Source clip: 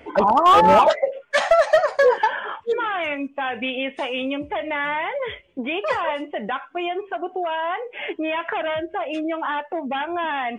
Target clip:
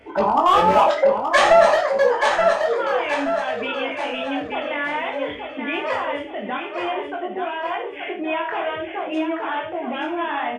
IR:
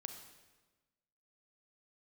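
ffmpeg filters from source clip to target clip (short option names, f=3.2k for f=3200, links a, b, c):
-filter_complex "[0:a]asettb=1/sr,asplit=3[a][b][c];[a]atrim=end=0.984[d];[b]atrim=start=0.98:end=1.74,asetpts=PTS-STARTPTS,afade=t=in:d=0.004:c=qsin,afade=t=out:st=0.756:d=0.004:c=qsin,acontrast=88[e];[c]atrim=start=1.736[f];[d][e]acrossfade=d=0.004:c1=hsin:c2=qsin[g];[g][f]acrossfade=d=0.004:c1=qsin:c2=hsin,aecho=1:1:876|1752|2628|3504|4380:0.501|0.205|0.0842|0.0345|0.0142,flanger=delay=18:depth=6:speed=0.53[h];[1:a]atrim=start_sample=2205,afade=t=out:st=0.23:d=0.01,atrim=end_sample=10584,asetrate=83790,aresample=44100[i];[h][i]afir=irnorm=-1:irlink=0,alimiter=level_in=14.5dB:limit=-1dB:release=50:level=0:latency=1,volume=-3.5dB"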